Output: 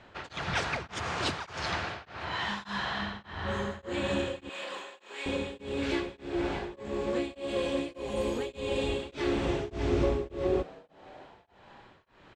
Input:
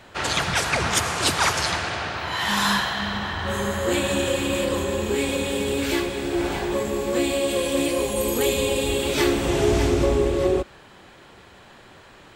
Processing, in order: 4.49–5.26 HPF 990 Hz 12 dB/oct; modulation noise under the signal 27 dB; air absorption 130 m; frequency-shifting echo 0.315 s, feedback 64%, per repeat +110 Hz, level -22 dB; beating tremolo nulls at 1.7 Hz; gain -5.5 dB

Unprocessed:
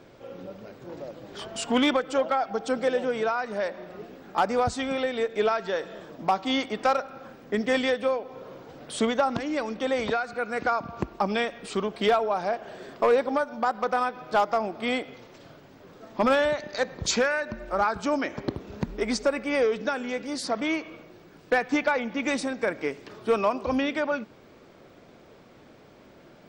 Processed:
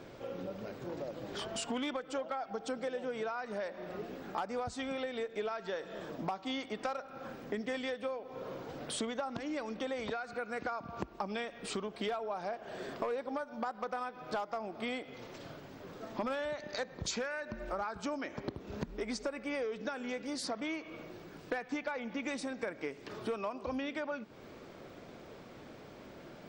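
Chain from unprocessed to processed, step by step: compressor 4:1, threshold -38 dBFS, peak gain reduction 17 dB; gain +1 dB

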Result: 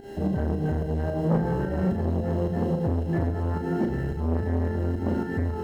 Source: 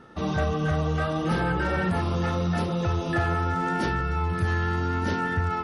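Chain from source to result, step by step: HPF 57 Hz 24 dB/oct; bell 230 Hz +4 dB 0.52 oct; requantised 6-bit, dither triangular; buzz 400 Hz, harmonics 34, -36 dBFS -4 dB/oct; pump 109 bpm, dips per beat 2, -15 dB, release 0.129 s; running mean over 37 samples; on a send: flutter echo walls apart 6.3 m, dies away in 0.45 s; on the sum: core saturation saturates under 400 Hz; gain +3 dB

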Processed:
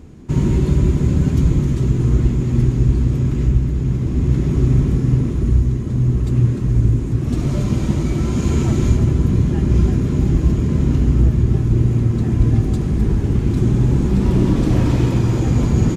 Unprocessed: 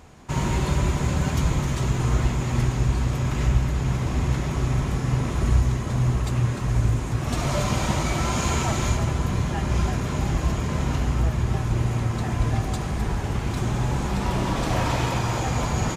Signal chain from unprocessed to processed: resonant low shelf 490 Hz +12.5 dB, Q 1.5; AGC; gain -3 dB

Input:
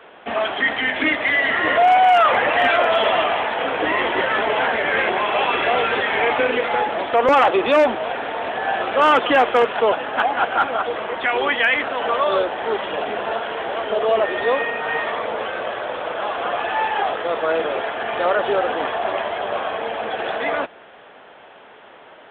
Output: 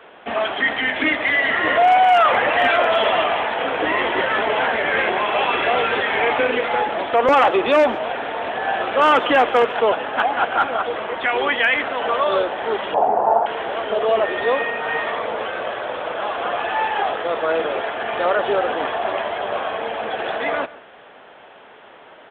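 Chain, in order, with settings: 12.94–13.46 synth low-pass 840 Hz, resonance Q 4.9; echo 0.139 s -19.5 dB

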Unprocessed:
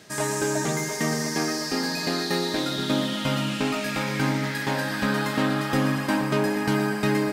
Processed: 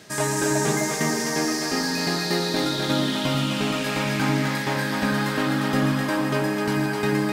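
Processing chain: on a send: split-band echo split 420 Hz, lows 92 ms, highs 0.257 s, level -4 dB; on the sum: vocal rider 2 s

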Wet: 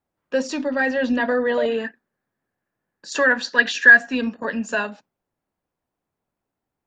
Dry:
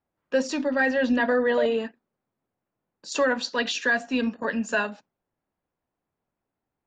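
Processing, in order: 1.68–4.15 bell 1700 Hz +14 dB 0.31 oct; gain +1.5 dB

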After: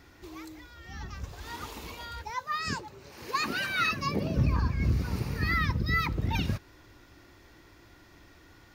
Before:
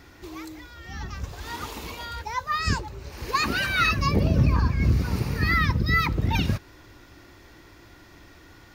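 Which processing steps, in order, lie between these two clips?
2.3–4.37 HPF 150 Hz 12 dB/oct; gain -5.5 dB

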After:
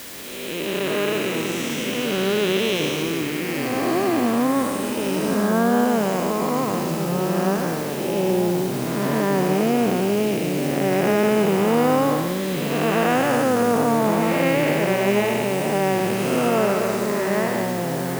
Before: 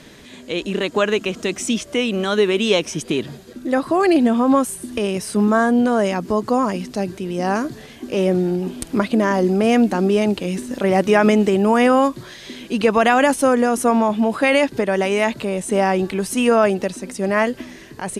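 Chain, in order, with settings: time blur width 0.426 s; high shelf 8300 Hz -10 dB; in parallel at 0 dB: limiter -15 dBFS, peak gain reduction 6.5 dB; on the sum: low shelf 230 Hz -11.5 dB; echoes that change speed 0.132 s, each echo -4 st, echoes 2, each echo -6 dB; requantised 6-bit, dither triangular; gain -1.5 dB

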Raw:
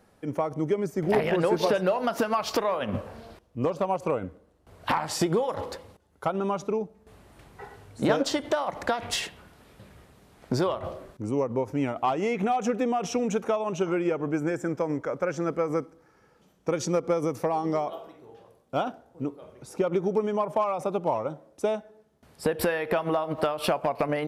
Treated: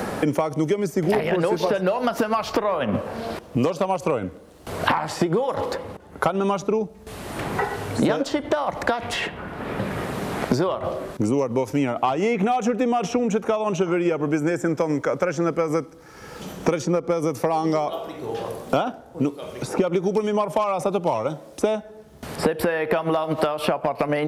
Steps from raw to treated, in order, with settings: three-band squash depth 100%; gain +4 dB

